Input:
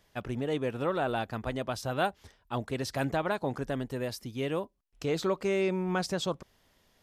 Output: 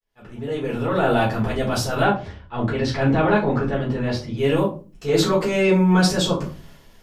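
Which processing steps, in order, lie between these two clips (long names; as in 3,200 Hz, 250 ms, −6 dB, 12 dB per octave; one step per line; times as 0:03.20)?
fade in at the beginning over 1.13 s
0:02.02–0:04.37: low-pass filter 3,400 Hz 12 dB per octave
transient designer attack −9 dB, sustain +4 dB
rectangular room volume 160 cubic metres, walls furnished, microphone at 4.1 metres
level +4 dB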